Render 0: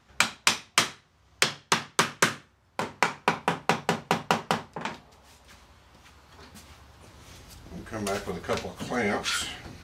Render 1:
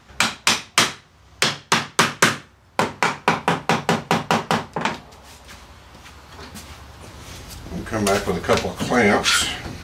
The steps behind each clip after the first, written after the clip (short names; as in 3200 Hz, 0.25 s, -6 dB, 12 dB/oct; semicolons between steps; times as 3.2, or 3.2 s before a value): maximiser +12 dB; gain -1 dB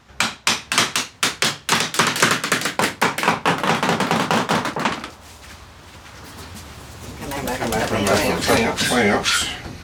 echoes that change speed 0.536 s, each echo +2 st, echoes 3; gain -1 dB